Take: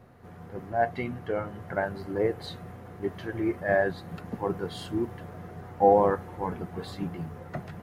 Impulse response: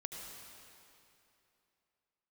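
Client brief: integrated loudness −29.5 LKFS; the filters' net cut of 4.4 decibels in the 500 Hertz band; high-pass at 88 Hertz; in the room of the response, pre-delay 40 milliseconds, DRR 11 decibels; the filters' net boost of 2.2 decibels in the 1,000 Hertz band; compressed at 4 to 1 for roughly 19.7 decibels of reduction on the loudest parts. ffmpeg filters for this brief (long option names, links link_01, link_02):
-filter_complex "[0:a]highpass=88,equalizer=frequency=500:width_type=o:gain=-7.5,equalizer=frequency=1000:width_type=o:gain=7,acompressor=threshold=-41dB:ratio=4,asplit=2[link_01][link_02];[1:a]atrim=start_sample=2205,adelay=40[link_03];[link_02][link_03]afir=irnorm=-1:irlink=0,volume=-9.5dB[link_04];[link_01][link_04]amix=inputs=2:normalize=0,volume=14dB"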